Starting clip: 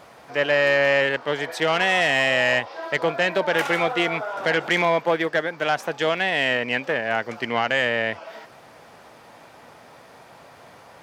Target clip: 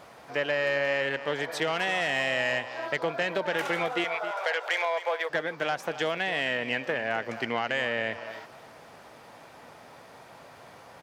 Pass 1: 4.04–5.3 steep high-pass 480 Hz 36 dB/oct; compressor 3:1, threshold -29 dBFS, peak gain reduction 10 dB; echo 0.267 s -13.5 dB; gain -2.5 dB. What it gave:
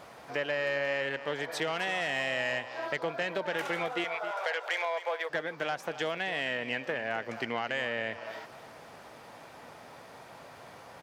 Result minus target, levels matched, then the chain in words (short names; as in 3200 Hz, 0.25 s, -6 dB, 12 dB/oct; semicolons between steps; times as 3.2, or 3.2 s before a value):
compressor: peak gain reduction +4 dB
4.04–5.3 steep high-pass 480 Hz 36 dB/oct; compressor 3:1, threshold -23 dBFS, peak gain reduction 6 dB; echo 0.267 s -13.5 dB; gain -2.5 dB